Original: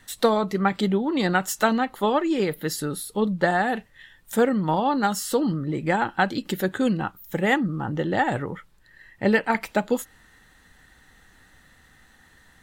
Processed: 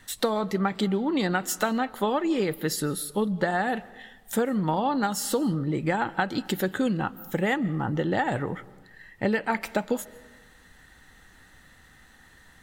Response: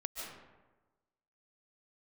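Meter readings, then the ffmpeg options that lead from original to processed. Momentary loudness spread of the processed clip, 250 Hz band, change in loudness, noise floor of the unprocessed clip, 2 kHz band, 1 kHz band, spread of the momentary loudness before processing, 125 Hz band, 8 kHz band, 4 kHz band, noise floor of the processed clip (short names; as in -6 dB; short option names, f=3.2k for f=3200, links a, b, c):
6 LU, -2.5 dB, -3.0 dB, -57 dBFS, -4.0 dB, -4.0 dB, 7 LU, -1.5 dB, 0.0 dB, -2.0 dB, -55 dBFS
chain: -filter_complex "[0:a]acompressor=threshold=-22dB:ratio=6,asplit=2[a][b];[1:a]atrim=start_sample=2205[c];[b][c]afir=irnorm=-1:irlink=0,volume=-17dB[d];[a][d]amix=inputs=2:normalize=0"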